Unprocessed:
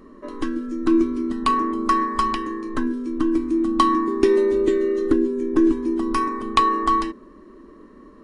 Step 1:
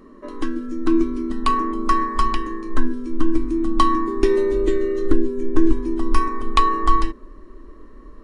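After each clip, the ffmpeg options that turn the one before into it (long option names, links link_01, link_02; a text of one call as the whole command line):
ffmpeg -i in.wav -af "asubboost=boost=9:cutoff=52" out.wav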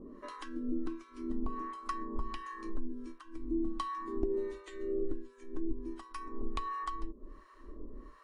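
ffmpeg -i in.wav -filter_complex "[0:a]acompressor=threshold=-27dB:ratio=6,acrossover=split=770[link_01][link_02];[link_01]aeval=exprs='val(0)*(1-1/2+1/2*cos(2*PI*1.4*n/s))':channel_layout=same[link_03];[link_02]aeval=exprs='val(0)*(1-1/2-1/2*cos(2*PI*1.4*n/s))':channel_layout=same[link_04];[link_03][link_04]amix=inputs=2:normalize=0,volume=-1.5dB" out.wav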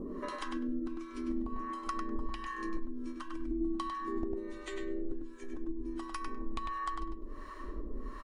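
ffmpeg -i in.wav -filter_complex "[0:a]acompressor=threshold=-48dB:ratio=3,asplit=2[link_01][link_02];[link_02]adelay=100,lowpass=frequency=3900:poles=1,volume=-3dB,asplit=2[link_03][link_04];[link_04]adelay=100,lowpass=frequency=3900:poles=1,volume=0.16,asplit=2[link_05][link_06];[link_06]adelay=100,lowpass=frequency=3900:poles=1,volume=0.16[link_07];[link_01][link_03][link_05][link_07]amix=inputs=4:normalize=0,volume=10dB" out.wav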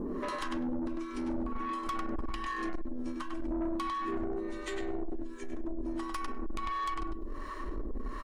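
ffmpeg -i in.wav -af "asoftclip=type=tanh:threshold=-36dB,volume=6.5dB" out.wav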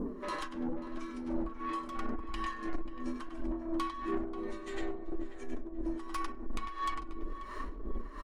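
ffmpeg -i in.wav -filter_complex "[0:a]tremolo=f=2.9:d=0.72,flanger=delay=4:depth=3.1:regen=-40:speed=0.91:shape=triangular,asplit=2[link_01][link_02];[link_02]adelay=537,lowpass=frequency=2400:poles=1,volume=-12dB,asplit=2[link_03][link_04];[link_04]adelay=537,lowpass=frequency=2400:poles=1,volume=0.41,asplit=2[link_05][link_06];[link_06]adelay=537,lowpass=frequency=2400:poles=1,volume=0.41,asplit=2[link_07][link_08];[link_08]adelay=537,lowpass=frequency=2400:poles=1,volume=0.41[link_09];[link_01][link_03][link_05][link_07][link_09]amix=inputs=5:normalize=0,volume=4.5dB" out.wav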